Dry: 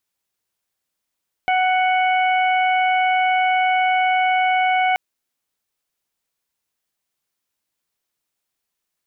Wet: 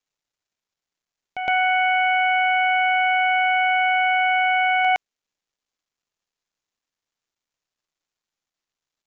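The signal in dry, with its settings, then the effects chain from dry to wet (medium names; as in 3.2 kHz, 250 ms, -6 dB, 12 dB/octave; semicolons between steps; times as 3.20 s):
steady additive tone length 3.48 s, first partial 742 Hz, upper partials -10/-6/-15.5 dB, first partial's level -16 dB
word length cut 12-bit, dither none; reverse echo 114 ms -9.5 dB; resampled via 16 kHz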